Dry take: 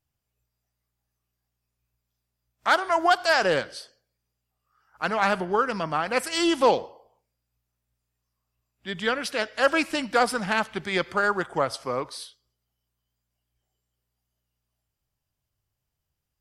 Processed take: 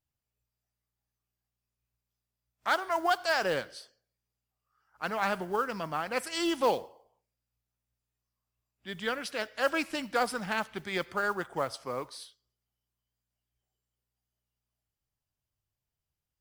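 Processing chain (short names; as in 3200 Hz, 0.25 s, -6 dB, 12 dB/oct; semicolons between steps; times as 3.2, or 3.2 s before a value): modulation noise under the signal 26 dB; gain -7 dB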